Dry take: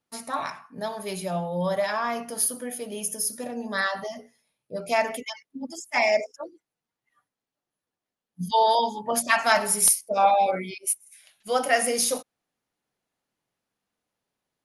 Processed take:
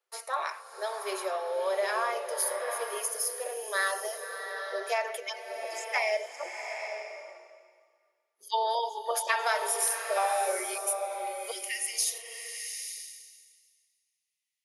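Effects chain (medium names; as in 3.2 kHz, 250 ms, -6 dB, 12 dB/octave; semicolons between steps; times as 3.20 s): compression, threshold -23 dBFS, peak gain reduction 9 dB; rippled Chebyshev high-pass 370 Hz, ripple 3 dB, from 11.50 s 1.9 kHz; swelling reverb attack 850 ms, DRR 5.5 dB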